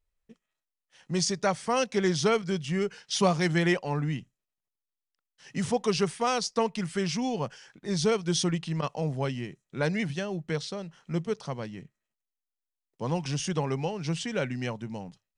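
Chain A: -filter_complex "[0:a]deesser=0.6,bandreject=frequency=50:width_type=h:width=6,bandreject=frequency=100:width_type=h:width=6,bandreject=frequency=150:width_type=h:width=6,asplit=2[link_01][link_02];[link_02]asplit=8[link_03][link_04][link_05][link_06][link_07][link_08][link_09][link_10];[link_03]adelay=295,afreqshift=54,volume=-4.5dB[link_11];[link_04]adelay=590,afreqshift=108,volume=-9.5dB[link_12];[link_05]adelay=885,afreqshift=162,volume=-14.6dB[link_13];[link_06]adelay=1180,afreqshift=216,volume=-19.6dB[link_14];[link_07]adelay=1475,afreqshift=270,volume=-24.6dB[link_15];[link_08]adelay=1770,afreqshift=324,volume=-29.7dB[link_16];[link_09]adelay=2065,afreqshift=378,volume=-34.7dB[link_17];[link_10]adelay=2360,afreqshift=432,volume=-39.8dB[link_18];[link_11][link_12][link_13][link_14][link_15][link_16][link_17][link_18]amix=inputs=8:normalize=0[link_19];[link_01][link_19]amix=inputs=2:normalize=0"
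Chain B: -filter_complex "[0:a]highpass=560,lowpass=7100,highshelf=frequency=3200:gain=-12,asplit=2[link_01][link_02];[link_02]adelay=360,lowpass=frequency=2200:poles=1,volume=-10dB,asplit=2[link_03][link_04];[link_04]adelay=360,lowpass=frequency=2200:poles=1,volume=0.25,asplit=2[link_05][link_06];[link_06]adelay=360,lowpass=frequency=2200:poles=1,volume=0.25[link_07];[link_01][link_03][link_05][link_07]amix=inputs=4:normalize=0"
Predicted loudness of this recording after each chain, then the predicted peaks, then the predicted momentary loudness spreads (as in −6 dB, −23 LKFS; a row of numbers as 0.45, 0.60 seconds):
−28.0, −35.5 LKFS; −11.0, −15.0 dBFS; 13, 14 LU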